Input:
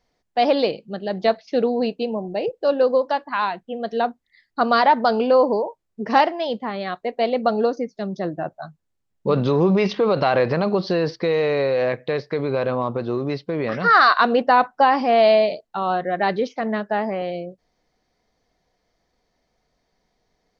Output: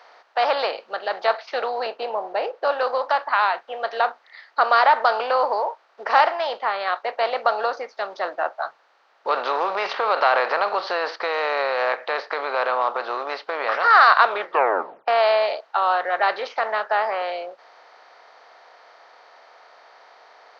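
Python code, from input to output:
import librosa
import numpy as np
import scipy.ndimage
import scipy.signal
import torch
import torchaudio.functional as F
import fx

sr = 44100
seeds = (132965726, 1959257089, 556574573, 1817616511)

y = fx.tilt_eq(x, sr, slope=-2.5, at=(1.86, 2.72))
y = fx.edit(y, sr, fx.tape_stop(start_s=14.23, length_s=0.85), tone=tone)
y = fx.bin_compress(y, sr, power=0.6)
y = scipy.signal.sosfilt(scipy.signal.bessel(4, 950.0, 'highpass', norm='mag', fs=sr, output='sos'), y)
y = fx.high_shelf(y, sr, hz=2600.0, db=-10.0)
y = y * librosa.db_to_amplitude(2.5)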